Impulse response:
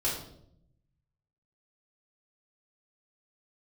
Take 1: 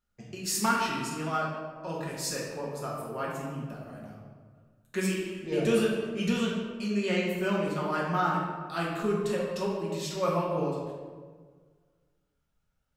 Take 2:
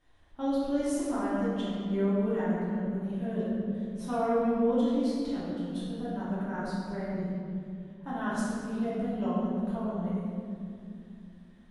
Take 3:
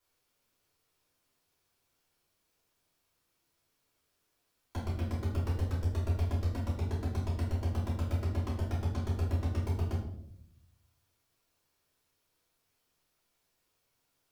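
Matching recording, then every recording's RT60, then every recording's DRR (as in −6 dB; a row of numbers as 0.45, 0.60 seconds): 3; 1.5, 2.5, 0.70 seconds; −5.0, −10.5, −7.5 decibels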